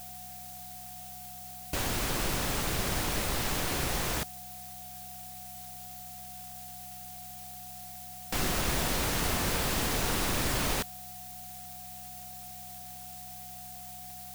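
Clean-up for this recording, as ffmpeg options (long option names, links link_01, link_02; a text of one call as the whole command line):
ffmpeg -i in.wav -af "adeclick=threshold=4,bandreject=frequency=65:width_type=h:width=4,bandreject=frequency=130:width_type=h:width=4,bandreject=frequency=195:width_type=h:width=4,bandreject=frequency=730:width=30,afftdn=noise_reduction=30:noise_floor=-45" out.wav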